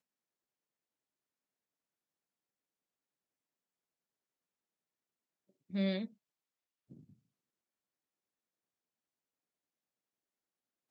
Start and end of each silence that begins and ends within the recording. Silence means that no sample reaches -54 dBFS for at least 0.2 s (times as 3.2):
6.08–6.91